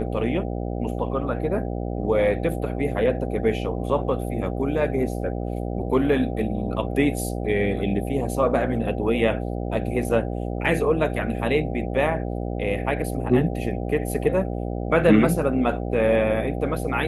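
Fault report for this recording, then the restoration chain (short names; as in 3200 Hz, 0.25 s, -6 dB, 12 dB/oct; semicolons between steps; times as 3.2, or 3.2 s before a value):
buzz 60 Hz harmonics 13 -28 dBFS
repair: de-hum 60 Hz, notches 13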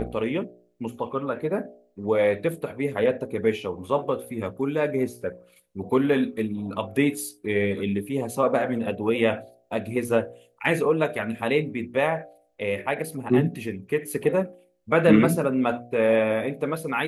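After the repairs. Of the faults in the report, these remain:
none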